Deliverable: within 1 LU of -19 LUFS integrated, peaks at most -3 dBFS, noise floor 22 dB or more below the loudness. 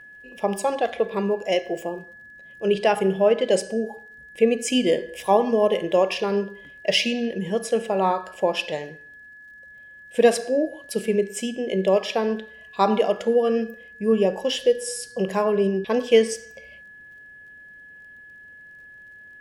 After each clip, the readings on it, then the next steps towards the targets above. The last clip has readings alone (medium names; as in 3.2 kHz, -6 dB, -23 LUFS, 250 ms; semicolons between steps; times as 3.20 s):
tick rate 33 per s; steady tone 1.7 kHz; tone level -43 dBFS; loudness -23.0 LUFS; peak level -5.0 dBFS; loudness target -19.0 LUFS
-> de-click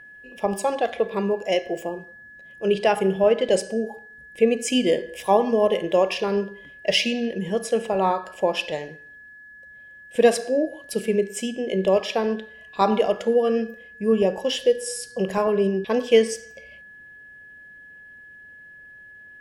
tick rate 0.31 per s; steady tone 1.7 kHz; tone level -43 dBFS
-> band-stop 1.7 kHz, Q 30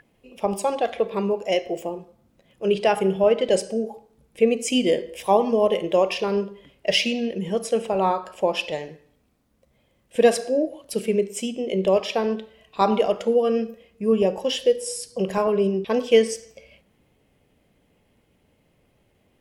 steady tone not found; loudness -23.0 LUFS; peak level -5.0 dBFS; loudness target -19.0 LUFS
-> trim +4 dB; peak limiter -3 dBFS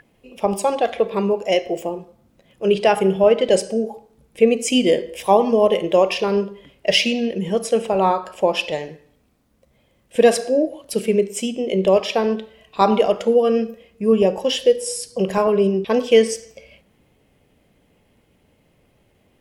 loudness -19.0 LUFS; peak level -3.0 dBFS; noise floor -61 dBFS